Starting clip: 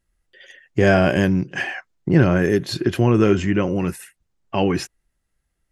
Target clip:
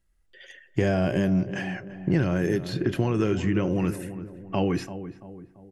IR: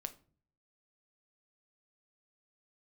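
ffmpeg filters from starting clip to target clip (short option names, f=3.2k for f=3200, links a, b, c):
-filter_complex "[0:a]acrossover=split=790|3000[a][b][c];[a]acompressor=threshold=-19dB:ratio=4[d];[b]acompressor=threshold=-35dB:ratio=4[e];[c]acompressor=threshold=-42dB:ratio=4[f];[d][e][f]amix=inputs=3:normalize=0,asplit=2[g][h];[h]adelay=338,lowpass=f=1.1k:p=1,volume=-11.5dB,asplit=2[i][j];[j]adelay=338,lowpass=f=1.1k:p=1,volume=0.49,asplit=2[k][l];[l]adelay=338,lowpass=f=1.1k:p=1,volume=0.49,asplit=2[m][n];[n]adelay=338,lowpass=f=1.1k:p=1,volume=0.49,asplit=2[o][p];[p]adelay=338,lowpass=f=1.1k:p=1,volume=0.49[q];[g][i][k][m][o][q]amix=inputs=6:normalize=0,asplit=2[r][s];[1:a]atrim=start_sample=2205,lowshelf=f=120:g=7.5[t];[s][t]afir=irnorm=-1:irlink=0,volume=-1dB[u];[r][u]amix=inputs=2:normalize=0,volume=-6.5dB"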